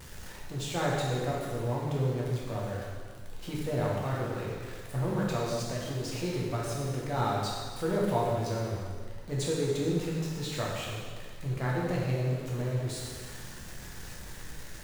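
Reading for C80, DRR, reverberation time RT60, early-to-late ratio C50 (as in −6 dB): 1.5 dB, −5.0 dB, 1.7 s, −0.5 dB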